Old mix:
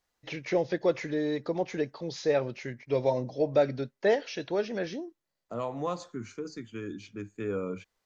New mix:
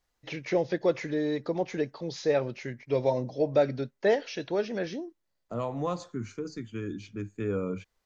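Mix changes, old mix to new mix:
first voice: add low shelf 110 Hz -10.5 dB; master: add low shelf 170 Hz +9 dB

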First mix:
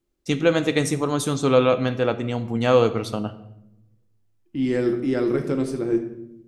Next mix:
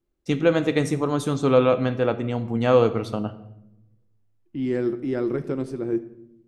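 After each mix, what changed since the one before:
second voice: send -8.5 dB; master: add high shelf 3100 Hz -9 dB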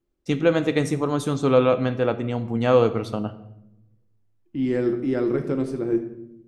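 second voice: send +7.0 dB

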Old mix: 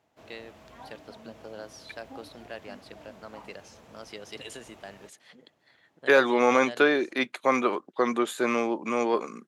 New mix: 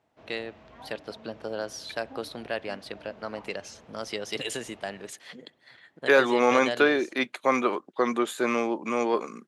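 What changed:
first voice +9.0 dB; background: add air absorption 160 m

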